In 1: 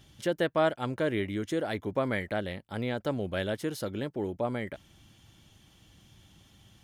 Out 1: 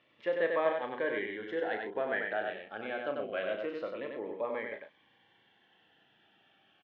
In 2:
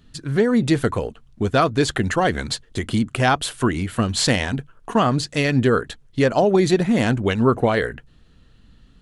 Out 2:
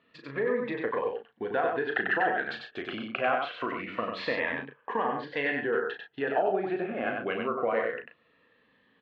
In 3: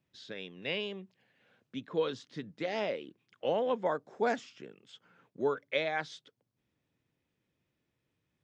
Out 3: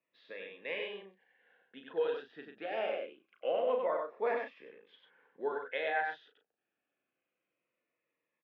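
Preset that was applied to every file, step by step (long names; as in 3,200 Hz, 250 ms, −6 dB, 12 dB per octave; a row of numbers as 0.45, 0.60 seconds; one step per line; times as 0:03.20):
treble cut that deepens with the level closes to 2,100 Hz, closed at −14 dBFS
downward compressor, threshold −20 dBFS
loudspeaker in its box 440–2,900 Hz, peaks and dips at 490 Hz +5 dB, 730 Hz +4 dB, 1,100 Hz +3 dB, 1,700 Hz +7 dB, 2,600 Hz +3 dB
double-tracking delay 36 ms −7 dB
single-tap delay 95 ms −4 dB
phaser whose notches keep moving one way falling 0.25 Hz
level −3.5 dB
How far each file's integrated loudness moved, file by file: −3.0, −10.0, −1.0 LU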